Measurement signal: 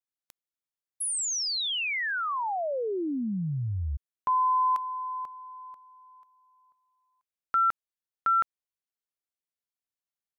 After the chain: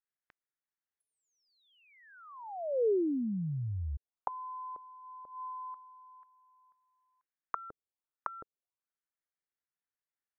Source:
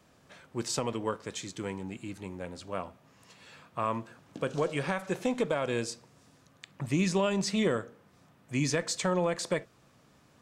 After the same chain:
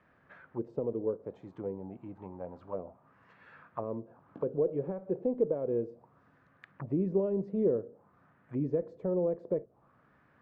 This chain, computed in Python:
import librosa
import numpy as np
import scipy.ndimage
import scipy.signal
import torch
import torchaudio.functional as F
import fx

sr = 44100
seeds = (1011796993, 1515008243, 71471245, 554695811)

y = fx.envelope_lowpass(x, sr, base_hz=450.0, top_hz=1800.0, q=2.7, full_db=-30.5, direction='down')
y = y * 10.0 ** (-5.5 / 20.0)